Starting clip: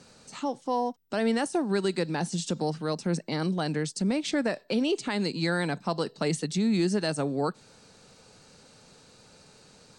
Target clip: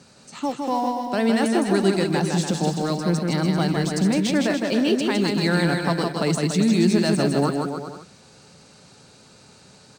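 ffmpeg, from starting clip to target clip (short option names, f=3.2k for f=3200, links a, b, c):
-filter_complex "[0:a]highpass=85,lowshelf=f=130:g=6,bandreject=f=480:w=12,asplit=2[a][b];[b]aeval=exprs='val(0)*gte(abs(val(0)),0.0282)':c=same,volume=-12dB[c];[a][c]amix=inputs=2:normalize=0,aecho=1:1:160|288|390.4|472.3|537.9:0.631|0.398|0.251|0.158|0.1,volume=2.5dB"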